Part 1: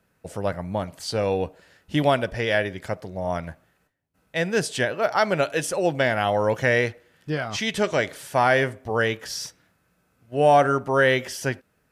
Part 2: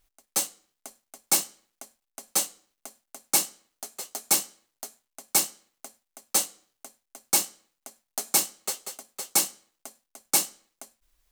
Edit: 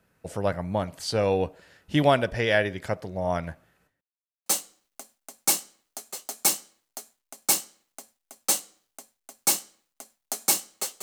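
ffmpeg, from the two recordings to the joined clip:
-filter_complex "[0:a]apad=whole_dur=11.02,atrim=end=11.02,asplit=2[a][b];[a]atrim=end=4.01,asetpts=PTS-STARTPTS,afade=t=out:st=4.006:d=0.004:c=hsin[c];[b]atrim=start=4.01:end=4.46,asetpts=PTS-STARTPTS,volume=0[d];[1:a]atrim=start=2.32:end=8.88,asetpts=PTS-STARTPTS,afade=t=in:d=0.004:c=hsin[e];[c][d][e]concat=n=3:v=0:a=1"

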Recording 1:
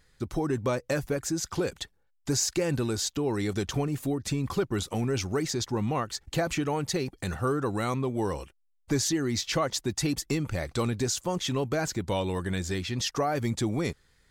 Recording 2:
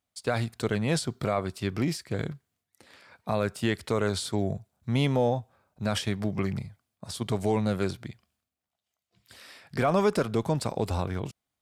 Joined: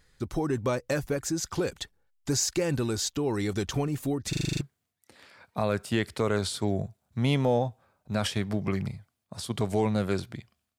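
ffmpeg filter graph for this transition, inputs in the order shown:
-filter_complex "[0:a]apad=whole_dur=10.78,atrim=end=10.78,asplit=8[a][b][c][d][e][f][g][h];[a]atrim=end=4.332[i];[b]atrim=start=4.288:end=4.332[j];[c]atrim=start=4.288:end=4.332[k];[d]atrim=start=4.288:end=4.332[l];[e]atrim=start=4.288:end=4.332[m];[f]atrim=start=4.288:end=4.332[n];[g]atrim=start=4.288:end=4.332[o];[h]atrim=start=4.288:end=4.332[p];[1:a]atrim=start=2.318:end=8.49[q];[i][j]acrossfade=d=0.004:c1=hsin:c2=hsin[r];[r][k]acrossfade=d=0.004:c1=hsin:c2=hsin[s];[s][l]acrossfade=d=0.004:c1=hsin:c2=hsin[t];[t][m]acrossfade=d=0.004:c1=hsin:c2=hsin[u];[u][n]acrossfade=d=0.004:c1=hsin:c2=hsin[v];[v][o]acrossfade=d=0.004:c1=hsin:c2=hsin[w];[w][p]acrossfade=d=0.004:c1=hsin:c2=hsin[x];[x][q]acrossfade=d=0.004:c1=hsin:c2=hsin"

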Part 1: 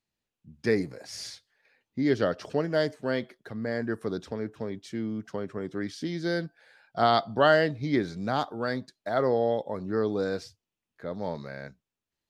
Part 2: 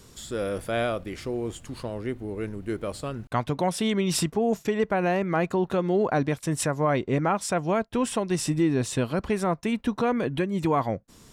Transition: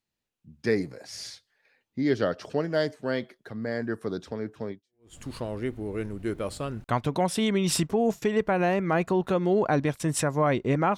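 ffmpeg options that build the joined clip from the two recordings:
-filter_complex "[0:a]apad=whole_dur=10.97,atrim=end=10.97,atrim=end=5.17,asetpts=PTS-STARTPTS[a];[1:a]atrim=start=1.14:end=7.4,asetpts=PTS-STARTPTS[b];[a][b]acrossfade=d=0.46:c1=exp:c2=exp"

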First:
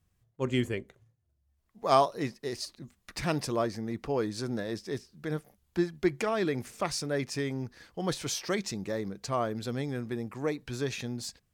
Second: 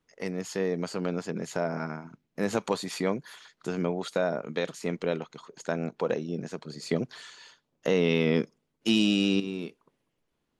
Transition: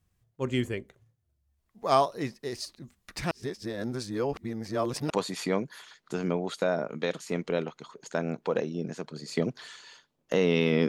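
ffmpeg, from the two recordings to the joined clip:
-filter_complex "[0:a]apad=whole_dur=10.88,atrim=end=10.88,asplit=2[a][b];[a]atrim=end=3.312[c];[b]atrim=start=3.308:end=5.102,asetpts=PTS-STARTPTS,areverse[d];[1:a]atrim=start=2.638:end=8.42[e];[c][d]acrossfade=d=0.004:c1=hsin:c2=hsin[f];[f][e]acrossfade=d=0.004:c1=hsin:c2=hsin"

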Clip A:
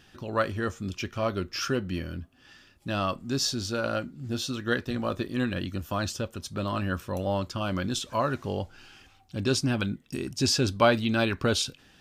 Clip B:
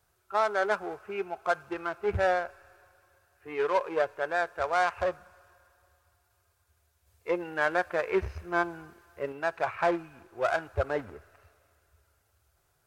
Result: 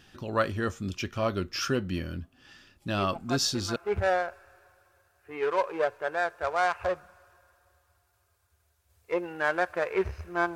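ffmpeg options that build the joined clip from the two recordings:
-filter_complex "[1:a]asplit=2[a][b];[0:a]apad=whole_dur=10.55,atrim=end=10.55,atrim=end=3.762[c];[b]atrim=start=1.928:end=8.72[d];[a]atrim=start=1.15:end=1.93,asetpts=PTS-STARTPTS,volume=-6.5dB,afade=t=in:d=0.004:c=hsin,afade=t=out:st=0.776:d=0.004:c=hsin,adelay=2980[e];[c][d]acrossfade=d=0.004:c1=hsin:c2=hsin[f];[f][e]amix=inputs=2:normalize=0"

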